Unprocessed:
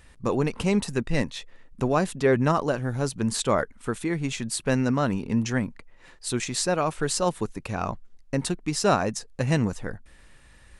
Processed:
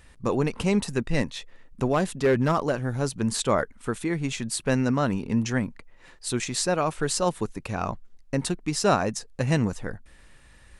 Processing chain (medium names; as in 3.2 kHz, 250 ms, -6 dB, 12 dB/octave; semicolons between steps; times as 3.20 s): 1.88–2.91 s: overload inside the chain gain 15.5 dB